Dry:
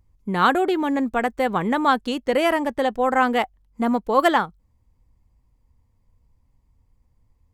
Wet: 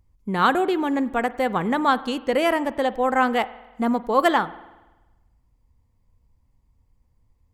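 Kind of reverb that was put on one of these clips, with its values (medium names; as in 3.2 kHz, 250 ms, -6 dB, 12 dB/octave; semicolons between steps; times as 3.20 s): spring tank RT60 1.1 s, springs 47 ms, chirp 45 ms, DRR 16.5 dB; trim -1 dB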